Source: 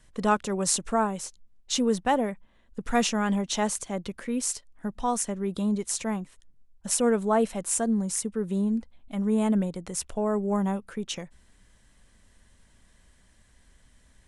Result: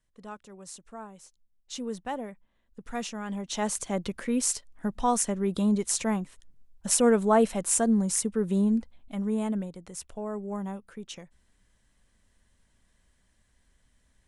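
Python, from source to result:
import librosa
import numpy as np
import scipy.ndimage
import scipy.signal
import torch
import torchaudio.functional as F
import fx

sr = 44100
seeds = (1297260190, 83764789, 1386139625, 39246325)

y = fx.gain(x, sr, db=fx.line((0.84, -19.0), (1.88, -10.0), (3.24, -10.0), (3.88, 2.0), (8.74, 2.0), (9.73, -8.0)))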